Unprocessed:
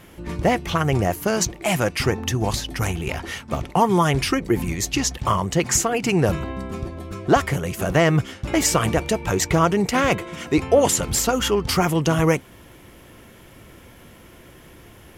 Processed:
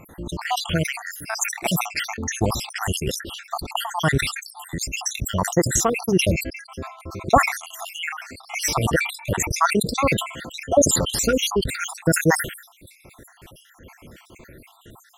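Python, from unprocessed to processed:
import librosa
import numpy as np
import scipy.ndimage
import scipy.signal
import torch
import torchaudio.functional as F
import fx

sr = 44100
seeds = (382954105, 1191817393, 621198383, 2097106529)

y = fx.spec_dropout(x, sr, seeds[0], share_pct=69)
y = fx.sustainer(y, sr, db_per_s=100.0)
y = y * librosa.db_to_amplitude(2.5)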